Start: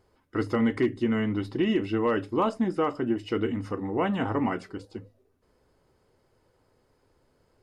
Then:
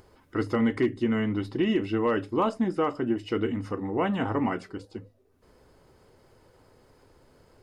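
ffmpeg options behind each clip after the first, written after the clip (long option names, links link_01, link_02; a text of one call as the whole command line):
ffmpeg -i in.wav -af "acompressor=mode=upward:threshold=-48dB:ratio=2.5" out.wav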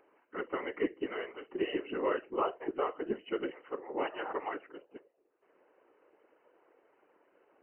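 ffmpeg -i in.wav -af "afftfilt=real='re*between(b*sr/4096,330,3000)':imag='im*between(b*sr/4096,330,3000)':win_size=4096:overlap=0.75,afftfilt=real='hypot(re,im)*cos(2*PI*random(0))':imag='hypot(re,im)*sin(2*PI*random(1))':win_size=512:overlap=0.75" out.wav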